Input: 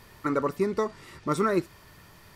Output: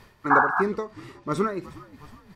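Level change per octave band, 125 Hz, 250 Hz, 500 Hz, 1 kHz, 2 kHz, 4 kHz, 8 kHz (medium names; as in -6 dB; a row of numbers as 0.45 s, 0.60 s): 0.0 dB, -0.5 dB, -0.5 dB, +8.0 dB, +12.0 dB, -2.5 dB, -4.5 dB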